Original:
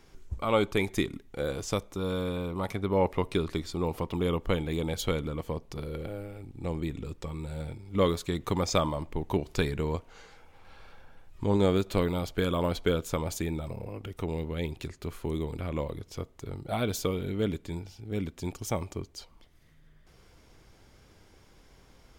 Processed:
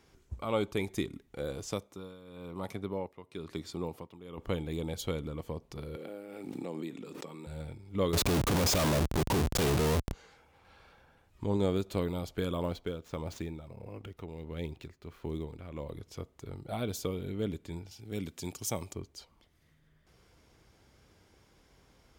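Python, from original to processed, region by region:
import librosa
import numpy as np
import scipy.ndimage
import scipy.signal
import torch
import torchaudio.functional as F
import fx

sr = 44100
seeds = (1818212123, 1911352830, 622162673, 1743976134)

y = fx.chain(x, sr, fx.highpass(hz=100.0, slope=12),
    fx.tremolo(hz=1.0, depth=0.85), at=(1.71, 4.38))
y = fx.chain(y, sr, fx.highpass(hz=200.0, slope=24),
    fx.pre_swell(db_per_s=23.0), at=(5.96, 7.47))
y = fx.chain(y, sr, fx.leveller(passes=3),
    fx.schmitt(flips_db=-36.5), at=(8.13, 10.13))
y = fx.chain(y, sr, fx.median_filter(points=5),
    fx.tremolo(hz=1.5, depth=0.55), at=(12.65, 15.88))
y = fx.chain(y, sr, fx.highpass(hz=81.0, slope=12),
    fx.high_shelf(hz=2600.0, db=9.5), at=(17.91, 18.93))
y = scipy.signal.sosfilt(scipy.signal.butter(2, 44.0, 'highpass', fs=sr, output='sos'), y)
y = fx.dynamic_eq(y, sr, hz=1700.0, q=0.72, threshold_db=-43.0, ratio=4.0, max_db=-4)
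y = y * 10.0 ** (-4.5 / 20.0)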